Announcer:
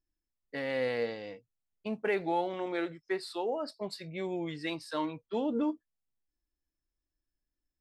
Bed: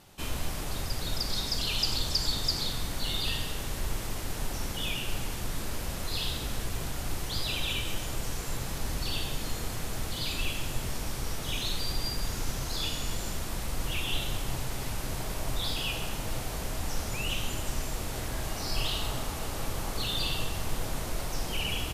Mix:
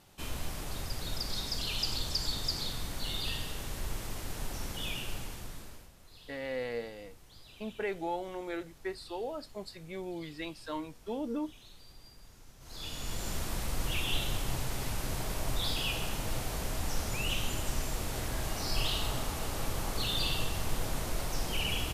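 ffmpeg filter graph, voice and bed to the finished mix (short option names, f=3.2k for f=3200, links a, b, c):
-filter_complex "[0:a]adelay=5750,volume=-4.5dB[a];[1:a]volume=17.5dB,afade=t=out:st=5:d=0.91:silence=0.11885,afade=t=in:st=12.59:d=0.79:silence=0.0794328[b];[a][b]amix=inputs=2:normalize=0"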